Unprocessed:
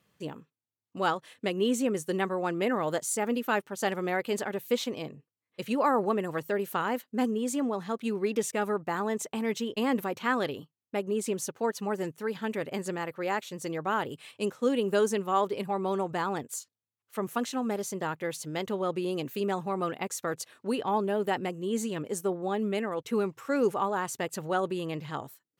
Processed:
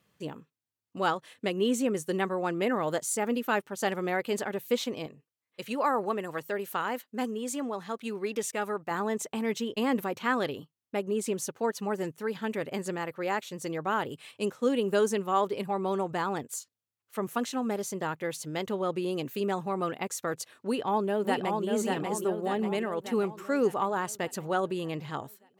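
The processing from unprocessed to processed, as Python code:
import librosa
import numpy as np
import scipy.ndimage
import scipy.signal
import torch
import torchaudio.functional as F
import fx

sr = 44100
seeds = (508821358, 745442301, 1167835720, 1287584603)

y = fx.low_shelf(x, sr, hz=420.0, db=-7.0, at=(5.06, 8.91))
y = fx.echo_throw(y, sr, start_s=20.54, length_s=1.11, ms=590, feedback_pct=55, wet_db=-3.5)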